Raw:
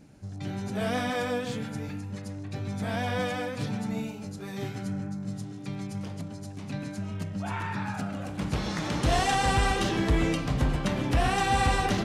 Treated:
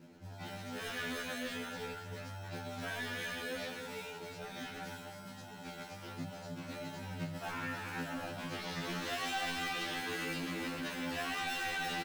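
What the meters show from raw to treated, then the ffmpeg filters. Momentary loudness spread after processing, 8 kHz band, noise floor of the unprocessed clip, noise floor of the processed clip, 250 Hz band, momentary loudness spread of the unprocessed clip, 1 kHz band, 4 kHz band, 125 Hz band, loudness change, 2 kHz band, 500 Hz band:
11 LU, −8.0 dB, −40 dBFS, −49 dBFS, −12.5 dB, 13 LU, −12.0 dB, −5.0 dB, −16.5 dB, −10.0 dB, −5.0 dB, −11.0 dB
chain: -filter_complex "[0:a]highpass=220,lowpass=4500,asplit=2[link_01][link_02];[link_02]acrusher=samples=38:mix=1:aa=0.000001,volume=-5dB[link_03];[link_01][link_03]amix=inputs=2:normalize=0,aecho=1:1:307:0.398,acrossover=split=1200[link_04][link_05];[link_04]acompressor=threshold=-36dB:ratio=6[link_06];[link_06][link_05]amix=inputs=2:normalize=0,flanger=delay=19.5:depth=4:speed=1.3,asoftclip=type=tanh:threshold=-29.5dB,alimiter=level_in=10dB:limit=-24dB:level=0:latency=1,volume=-10dB,afftfilt=real='re*2*eq(mod(b,4),0)':imag='im*2*eq(mod(b,4),0)':win_size=2048:overlap=0.75,volume=4.5dB"

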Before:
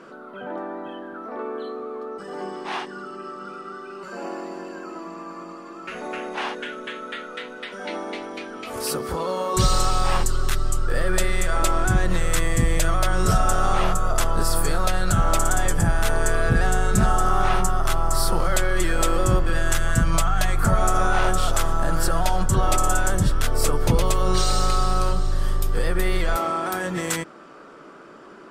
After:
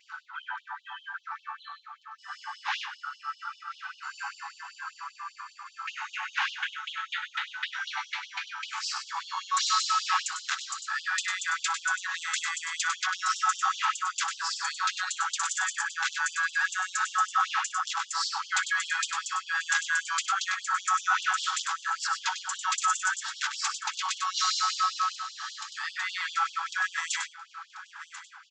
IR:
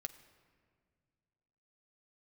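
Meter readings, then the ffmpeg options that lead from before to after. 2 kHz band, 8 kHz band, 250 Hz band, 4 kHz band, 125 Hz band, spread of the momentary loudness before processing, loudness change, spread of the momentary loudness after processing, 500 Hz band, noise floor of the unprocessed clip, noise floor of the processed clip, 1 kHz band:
+0.5 dB, −4.0 dB, below −40 dB, 0.0 dB, below −40 dB, 14 LU, −5.5 dB, 15 LU, below −40 dB, −42 dBFS, −56 dBFS, −4.0 dB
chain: -filter_complex "[0:a]asplit=2[link_01][link_02];[link_02]aecho=0:1:1038|2076|3114:0.15|0.0419|0.0117[link_03];[link_01][link_03]amix=inputs=2:normalize=0,acompressor=mode=upward:threshold=-19dB:ratio=2.5,asplit=2[link_04][link_05];[link_05]aecho=0:1:61|99|119:0.133|0.447|0.178[link_06];[link_04][link_06]amix=inputs=2:normalize=0,aresample=16000,aresample=44100,agate=range=-33dB:threshold=-22dB:ratio=3:detection=peak,equalizer=frequency=1600:width_type=o:width=0.22:gain=5.5,afftfilt=real='re*gte(b*sr/1024,740*pow(2900/740,0.5+0.5*sin(2*PI*5.1*pts/sr)))':imag='im*gte(b*sr/1024,740*pow(2900/740,0.5+0.5*sin(2*PI*5.1*pts/sr)))':win_size=1024:overlap=0.75,volume=-1dB"

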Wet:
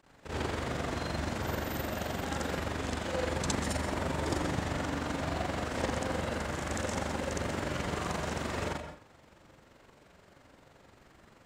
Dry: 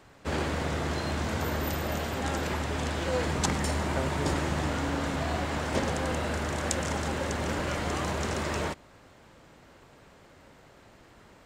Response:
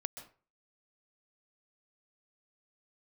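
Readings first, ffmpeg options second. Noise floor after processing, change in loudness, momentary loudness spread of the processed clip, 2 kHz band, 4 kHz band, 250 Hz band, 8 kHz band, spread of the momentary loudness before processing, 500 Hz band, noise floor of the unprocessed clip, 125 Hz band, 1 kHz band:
−61 dBFS, −4.0 dB, 3 LU, −3.5 dB, −4.0 dB, −3.5 dB, −4.5 dB, 2 LU, −3.0 dB, −56 dBFS, −4.5 dB, −3.5 dB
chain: -filter_complex "[0:a]tremolo=f=23:d=0.974,asplit=2[link_01][link_02];[1:a]atrim=start_sample=2205,adelay=63[link_03];[link_02][link_03]afir=irnorm=-1:irlink=0,volume=6.5dB[link_04];[link_01][link_04]amix=inputs=2:normalize=0,volume=-6dB"

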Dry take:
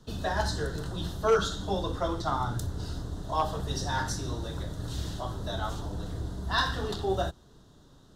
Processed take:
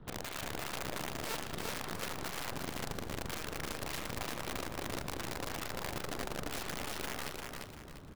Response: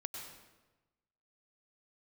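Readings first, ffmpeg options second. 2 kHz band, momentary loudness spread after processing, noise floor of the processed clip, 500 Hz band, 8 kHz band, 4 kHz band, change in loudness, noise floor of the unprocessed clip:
−4.5 dB, 2 LU, −49 dBFS, −11.5 dB, −1.0 dB, −5.5 dB, −8.0 dB, −56 dBFS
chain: -filter_complex "[0:a]lowpass=frequency=2600:width=0.5412,lowpass=frequency=2600:width=1.3066,lowshelf=frequency=370:gain=3,asplit=2[link_01][link_02];[link_02]alimiter=level_in=0.5dB:limit=-24dB:level=0:latency=1:release=143,volume=-0.5dB,volume=0dB[link_03];[link_01][link_03]amix=inputs=2:normalize=0,acompressor=threshold=-32dB:ratio=16,aeval=exprs='(tanh(56.2*val(0)+0.8)-tanh(0.8))/56.2':channel_layout=same,aeval=exprs='(mod(42.2*val(0)+1,2)-1)/42.2':channel_layout=same,aeval=exprs='0.0237*(cos(1*acos(clip(val(0)/0.0237,-1,1)))-cos(1*PI/2))+0.00944*(cos(3*acos(clip(val(0)/0.0237,-1,1)))-cos(3*PI/2))+0.00422*(cos(7*acos(clip(val(0)/0.0237,-1,1)))-cos(7*PI/2))':channel_layout=same,aecho=1:1:346|692|1038|1384:0.668|0.227|0.0773|0.0263,asplit=2[link_04][link_05];[1:a]atrim=start_sample=2205[link_06];[link_05][link_06]afir=irnorm=-1:irlink=0,volume=-8.5dB[link_07];[link_04][link_07]amix=inputs=2:normalize=0,volume=-2.5dB"

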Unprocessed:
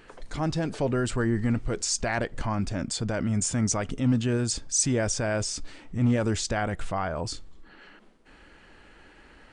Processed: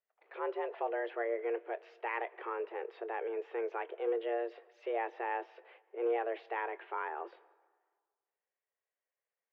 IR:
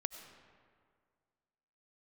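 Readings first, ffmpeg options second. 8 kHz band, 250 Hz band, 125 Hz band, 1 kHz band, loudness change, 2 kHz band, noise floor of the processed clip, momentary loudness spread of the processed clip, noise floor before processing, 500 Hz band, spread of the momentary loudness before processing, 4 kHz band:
below −40 dB, −20.0 dB, below −40 dB, −3.0 dB, −10.5 dB, −7.5 dB, below −85 dBFS, 8 LU, −54 dBFS, −4.0 dB, 7 LU, −24.0 dB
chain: -filter_complex "[0:a]agate=range=-34dB:threshold=-41dB:ratio=16:detection=peak,asplit=2[link_01][link_02];[1:a]atrim=start_sample=2205,asetrate=52920,aresample=44100,adelay=25[link_03];[link_02][link_03]afir=irnorm=-1:irlink=0,volume=-13dB[link_04];[link_01][link_04]amix=inputs=2:normalize=0,highpass=frequency=150:width_type=q:width=0.5412,highpass=frequency=150:width_type=q:width=1.307,lowpass=frequency=2600:width_type=q:width=0.5176,lowpass=frequency=2600:width_type=q:width=0.7071,lowpass=frequency=2600:width_type=q:width=1.932,afreqshift=230,volume=-8.5dB"

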